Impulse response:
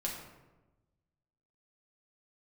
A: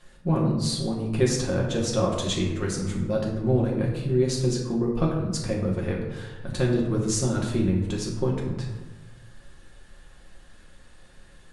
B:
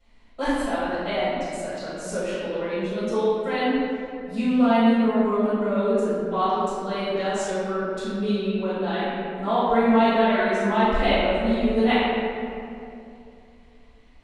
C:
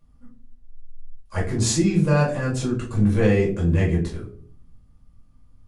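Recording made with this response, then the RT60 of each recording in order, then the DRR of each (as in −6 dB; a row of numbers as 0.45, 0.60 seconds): A; 1.1, 2.6, 0.50 seconds; −3.0, −14.0, −5.5 decibels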